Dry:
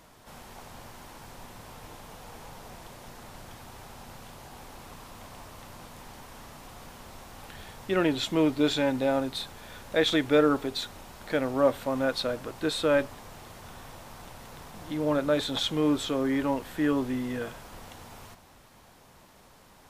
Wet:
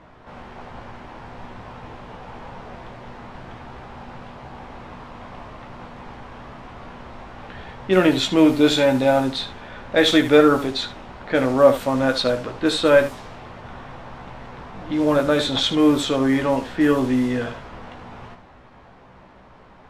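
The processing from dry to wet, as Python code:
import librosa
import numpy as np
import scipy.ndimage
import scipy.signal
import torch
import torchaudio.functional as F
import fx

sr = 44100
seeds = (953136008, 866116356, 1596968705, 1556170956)

y = fx.room_early_taps(x, sr, ms=(16, 75), db=(-6.0, -11.5))
y = fx.env_lowpass(y, sr, base_hz=2000.0, full_db=-20.5)
y = F.gain(torch.from_numpy(y), 7.5).numpy()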